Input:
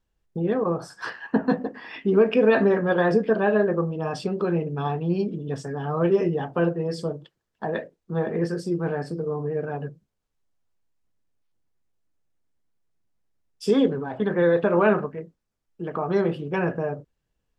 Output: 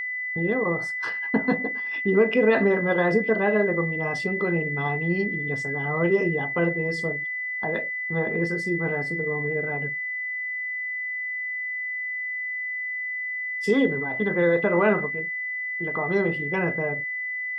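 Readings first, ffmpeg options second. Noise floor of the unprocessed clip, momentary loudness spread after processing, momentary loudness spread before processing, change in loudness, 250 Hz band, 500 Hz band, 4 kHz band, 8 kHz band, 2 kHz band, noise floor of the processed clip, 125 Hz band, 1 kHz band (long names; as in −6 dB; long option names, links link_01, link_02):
−79 dBFS, 7 LU, 13 LU, −0.5 dB, −1.5 dB, −1.5 dB, −1.5 dB, can't be measured, +10.5 dB, −31 dBFS, −1.5 dB, −1.5 dB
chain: -af "agate=range=-10dB:threshold=-39dB:ratio=16:detection=peak,aeval=exprs='val(0)+0.0501*sin(2*PI*2000*n/s)':channel_layout=same,volume=-1.5dB"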